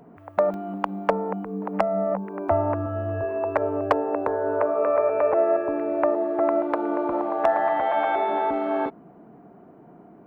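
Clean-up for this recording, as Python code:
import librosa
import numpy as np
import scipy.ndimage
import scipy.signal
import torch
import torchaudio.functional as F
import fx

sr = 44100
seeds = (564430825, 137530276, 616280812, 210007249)

y = fx.fix_declip(x, sr, threshold_db=-9.5)
y = fx.fix_interpolate(y, sr, at_s=(0.54,), length_ms=1.5)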